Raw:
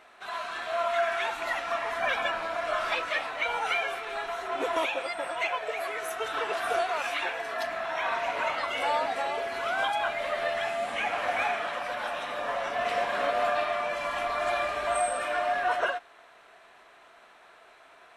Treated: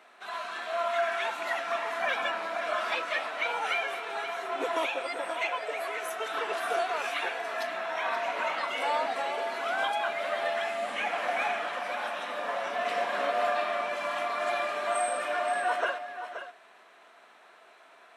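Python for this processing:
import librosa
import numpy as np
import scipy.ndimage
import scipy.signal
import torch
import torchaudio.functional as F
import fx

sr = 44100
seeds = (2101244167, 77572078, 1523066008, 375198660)

y = scipy.signal.sosfilt(scipy.signal.butter(8, 170.0, 'highpass', fs=sr, output='sos'), x)
y = y + 10.0 ** (-10.5 / 20.0) * np.pad(y, (int(526 * sr / 1000.0), 0))[:len(y)]
y = F.gain(torch.from_numpy(y), -1.5).numpy()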